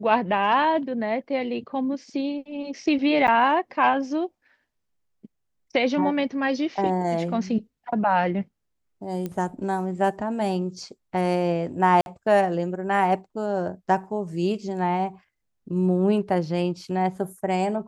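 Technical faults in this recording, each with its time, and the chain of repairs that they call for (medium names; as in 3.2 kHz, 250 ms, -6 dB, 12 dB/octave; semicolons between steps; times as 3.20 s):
3.27–3.28 s: dropout 9.2 ms
9.26 s: pop -18 dBFS
12.01–12.06 s: dropout 51 ms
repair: de-click; interpolate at 3.27 s, 9.2 ms; interpolate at 12.01 s, 51 ms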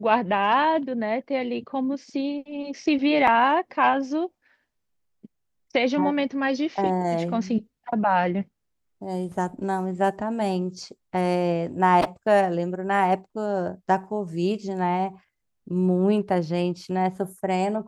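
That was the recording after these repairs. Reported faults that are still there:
nothing left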